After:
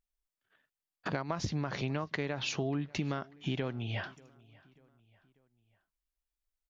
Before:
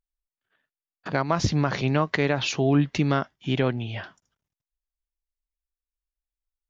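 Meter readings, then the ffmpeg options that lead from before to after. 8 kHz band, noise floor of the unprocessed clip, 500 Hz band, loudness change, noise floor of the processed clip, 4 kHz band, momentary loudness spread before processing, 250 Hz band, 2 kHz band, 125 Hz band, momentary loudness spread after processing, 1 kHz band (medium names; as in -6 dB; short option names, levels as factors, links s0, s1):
no reading, under -85 dBFS, -11.5 dB, -11.0 dB, under -85 dBFS, -8.5 dB, 12 LU, -11.5 dB, -9.5 dB, -10.5 dB, 4 LU, -11.5 dB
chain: -filter_complex "[0:a]acompressor=threshold=0.0282:ratio=6,asplit=2[s0][s1];[s1]adelay=590,lowpass=f=4900:p=1,volume=0.0631,asplit=2[s2][s3];[s3]adelay=590,lowpass=f=4900:p=1,volume=0.48,asplit=2[s4][s5];[s5]adelay=590,lowpass=f=4900:p=1,volume=0.48[s6];[s2][s4][s6]amix=inputs=3:normalize=0[s7];[s0][s7]amix=inputs=2:normalize=0"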